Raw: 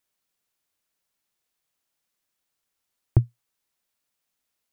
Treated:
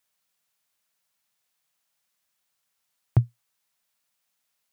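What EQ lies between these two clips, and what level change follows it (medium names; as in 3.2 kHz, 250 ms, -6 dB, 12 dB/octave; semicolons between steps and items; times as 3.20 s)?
high-pass 120 Hz; peaking EQ 340 Hz -10.5 dB 0.92 oct; +3.5 dB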